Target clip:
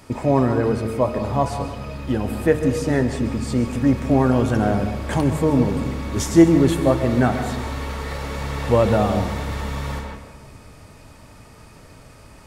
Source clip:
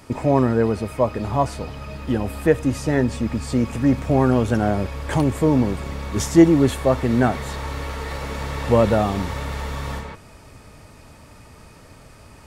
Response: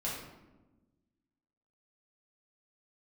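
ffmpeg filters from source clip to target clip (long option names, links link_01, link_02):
-filter_complex "[0:a]bandreject=frequency=76.21:width_type=h:width=4,bandreject=frequency=152.42:width_type=h:width=4,bandreject=frequency=228.63:width_type=h:width=4,bandreject=frequency=304.84:width_type=h:width=4,bandreject=frequency=381.05:width_type=h:width=4,bandreject=frequency=457.26:width_type=h:width=4,bandreject=frequency=533.47:width_type=h:width=4,bandreject=frequency=609.68:width_type=h:width=4,bandreject=frequency=685.89:width_type=h:width=4,bandreject=frequency=762.1:width_type=h:width=4,bandreject=frequency=838.31:width_type=h:width=4,bandreject=frequency=914.52:width_type=h:width=4,bandreject=frequency=990.73:width_type=h:width=4,bandreject=frequency=1066.94:width_type=h:width=4,bandreject=frequency=1143.15:width_type=h:width=4,bandreject=frequency=1219.36:width_type=h:width=4,bandreject=frequency=1295.57:width_type=h:width=4,bandreject=frequency=1371.78:width_type=h:width=4,bandreject=frequency=1447.99:width_type=h:width=4,bandreject=frequency=1524.2:width_type=h:width=4,bandreject=frequency=1600.41:width_type=h:width=4,bandreject=frequency=1676.62:width_type=h:width=4,bandreject=frequency=1752.83:width_type=h:width=4,bandreject=frequency=1829.04:width_type=h:width=4,bandreject=frequency=1905.25:width_type=h:width=4,bandreject=frequency=1981.46:width_type=h:width=4,bandreject=frequency=2057.67:width_type=h:width=4,bandreject=frequency=2133.88:width_type=h:width=4,bandreject=frequency=2210.09:width_type=h:width=4,bandreject=frequency=2286.3:width_type=h:width=4,bandreject=frequency=2362.51:width_type=h:width=4,bandreject=frequency=2438.72:width_type=h:width=4,bandreject=frequency=2514.93:width_type=h:width=4,bandreject=frequency=2591.14:width_type=h:width=4,bandreject=frequency=2667.35:width_type=h:width=4,bandreject=frequency=2743.56:width_type=h:width=4,bandreject=frequency=2819.77:width_type=h:width=4,bandreject=frequency=2895.98:width_type=h:width=4,bandreject=frequency=2972.19:width_type=h:width=4,asplit=2[link_01][link_02];[1:a]atrim=start_sample=2205,adelay=130[link_03];[link_02][link_03]afir=irnorm=-1:irlink=0,volume=-13dB[link_04];[link_01][link_04]amix=inputs=2:normalize=0"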